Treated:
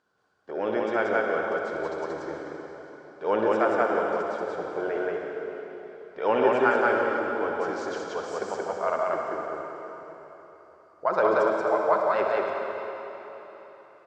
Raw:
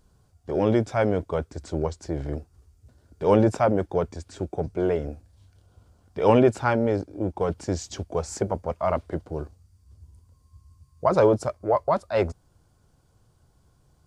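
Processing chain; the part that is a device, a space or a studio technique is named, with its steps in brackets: station announcement (band-pass 370–4200 Hz; peaking EQ 1.5 kHz +9.5 dB 0.55 oct; loudspeakers at several distances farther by 22 m -9 dB, 62 m -1 dB, 89 m -10 dB; reverberation RT60 3.8 s, pre-delay 96 ms, DRR 2 dB); trim -5 dB

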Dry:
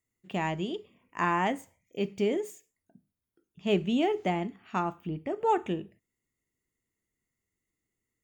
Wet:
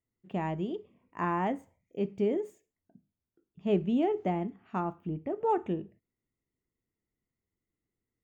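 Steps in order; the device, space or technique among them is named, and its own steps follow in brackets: through cloth (treble shelf 1.9 kHz -16.5 dB)

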